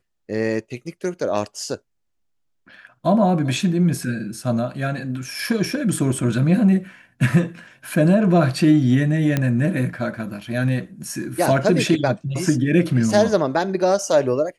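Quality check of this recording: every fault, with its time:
9.37 s: pop -7 dBFS

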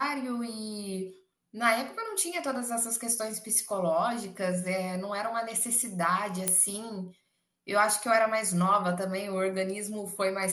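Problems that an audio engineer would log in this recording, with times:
6.48 s: pop -10 dBFS

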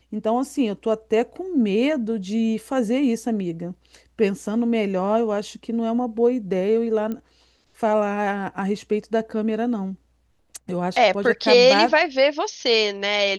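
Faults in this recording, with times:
7.12 s: pop -18 dBFS

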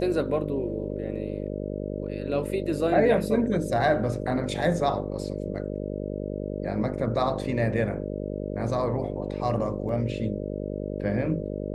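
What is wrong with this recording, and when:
buzz 50 Hz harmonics 12 -32 dBFS
9.89 s: dropout 2.5 ms

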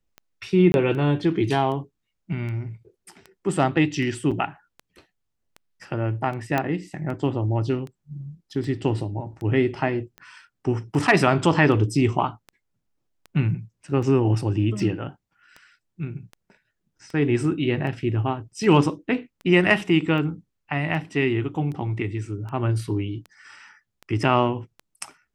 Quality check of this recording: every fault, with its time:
tick 78 rpm -25 dBFS
0.72–0.74 s: dropout 21 ms
4.31–4.32 s: dropout 6.5 ms
6.58 s: pop -10 dBFS

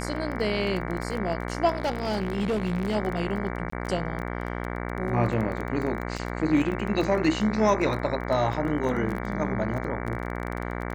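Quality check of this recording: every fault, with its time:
buzz 60 Hz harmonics 38 -32 dBFS
crackle 16 per s -30 dBFS
1.77–2.96 s: clipped -22 dBFS
3.70–3.72 s: dropout 24 ms
6.18–6.19 s: dropout 5.2 ms

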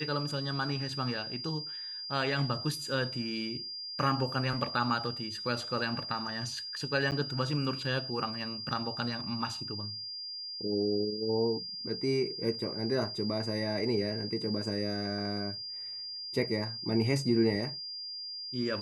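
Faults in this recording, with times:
whine 4.8 kHz -38 dBFS
7.11–7.12 s: dropout 8.7 ms

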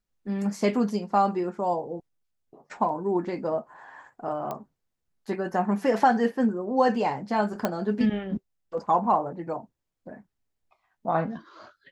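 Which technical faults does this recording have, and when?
4.51 s: pop -19 dBFS
7.65 s: pop -11 dBFS

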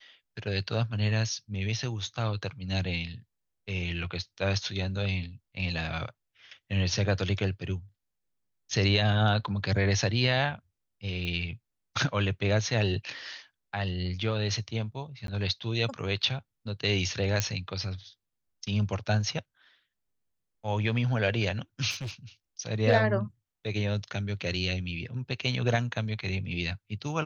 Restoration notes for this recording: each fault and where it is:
11.25 s: pop -22 dBFS
15.27–15.28 s: dropout 12 ms
17.40 s: pop -10 dBFS
21.90–22.11 s: clipped -32 dBFS

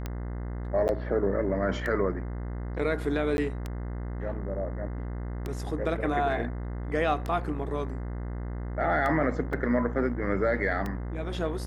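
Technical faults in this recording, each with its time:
buzz 60 Hz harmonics 35 -34 dBFS
tick 33 1/3 rpm -19 dBFS
0.88–0.89 s: dropout 9.7 ms
3.37–3.38 s: dropout 11 ms
9.53 s: dropout 3.7 ms

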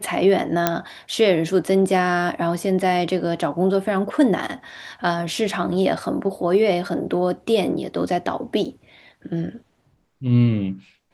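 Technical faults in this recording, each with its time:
0.67 s: pop -2 dBFS
8.65 s: dropout 3.9 ms

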